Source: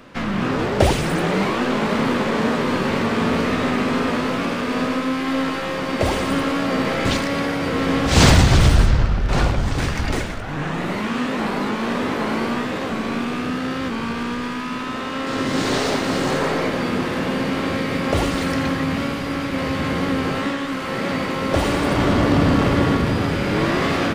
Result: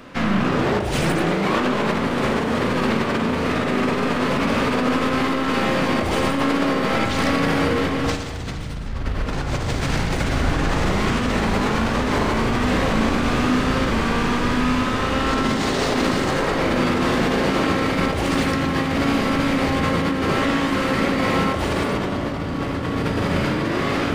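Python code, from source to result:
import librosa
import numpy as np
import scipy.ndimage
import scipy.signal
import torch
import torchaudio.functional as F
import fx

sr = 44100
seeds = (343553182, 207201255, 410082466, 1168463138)

y = fx.echo_diffused(x, sr, ms=1497, feedback_pct=75, wet_db=-10.0)
y = fx.over_compress(y, sr, threshold_db=-22.0, ratio=-1.0)
y = fx.rev_spring(y, sr, rt60_s=1.0, pass_ms=(36,), chirp_ms=40, drr_db=5.5)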